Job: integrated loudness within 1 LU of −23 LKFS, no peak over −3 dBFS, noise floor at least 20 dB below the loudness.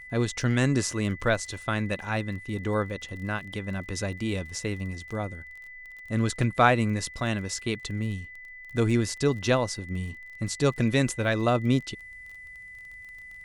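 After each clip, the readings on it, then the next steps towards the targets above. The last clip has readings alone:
crackle rate 28 per second; interfering tone 2,000 Hz; level of the tone −42 dBFS; integrated loudness −28.0 LKFS; sample peak −5.5 dBFS; target loudness −23.0 LKFS
→ click removal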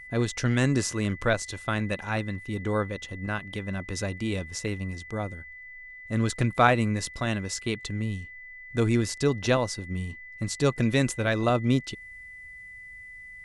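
crackle rate 0 per second; interfering tone 2,000 Hz; level of the tone −42 dBFS
→ notch filter 2,000 Hz, Q 30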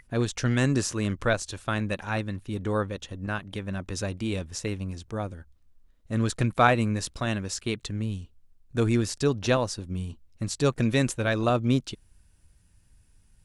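interfering tone none found; integrated loudness −28.0 LKFS; sample peak −5.5 dBFS; target loudness −23.0 LKFS
→ level +5 dB
brickwall limiter −3 dBFS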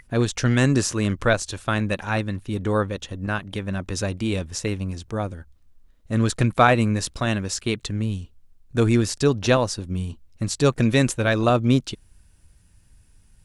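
integrated loudness −23.0 LKFS; sample peak −3.0 dBFS; background noise floor −56 dBFS

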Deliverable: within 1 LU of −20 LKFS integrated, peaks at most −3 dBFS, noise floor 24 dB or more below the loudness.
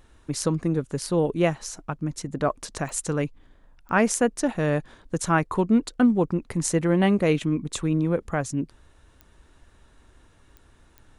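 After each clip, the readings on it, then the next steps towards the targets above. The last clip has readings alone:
number of clicks 5; integrated loudness −25.0 LKFS; sample peak −6.5 dBFS; target loudness −20.0 LKFS
→ click removal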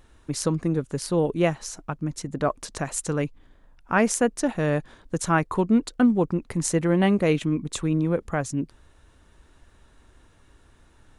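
number of clicks 0; integrated loudness −25.0 LKFS; sample peak −6.5 dBFS; target loudness −20.0 LKFS
→ level +5 dB
brickwall limiter −3 dBFS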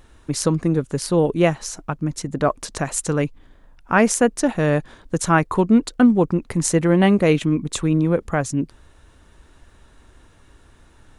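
integrated loudness −20.0 LKFS; sample peak −3.0 dBFS; background noise floor −52 dBFS

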